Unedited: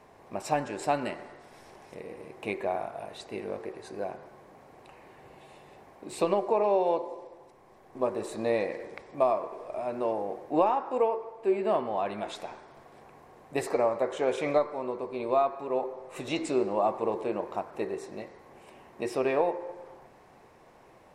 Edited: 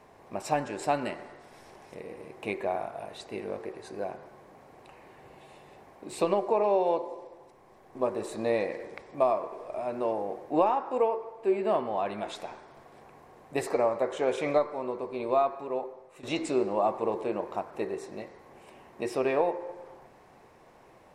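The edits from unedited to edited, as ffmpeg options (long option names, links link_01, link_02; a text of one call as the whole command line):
ffmpeg -i in.wav -filter_complex "[0:a]asplit=2[link_01][link_02];[link_01]atrim=end=16.23,asetpts=PTS-STARTPTS,afade=type=out:start_time=15.51:duration=0.72:silence=0.188365[link_03];[link_02]atrim=start=16.23,asetpts=PTS-STARTPTS,afade=type=in:duration=0.004:curve=hsin:silence=0.188365[link_04];[link_03][link_04]concat=n=2:v=0:a=1" out.wav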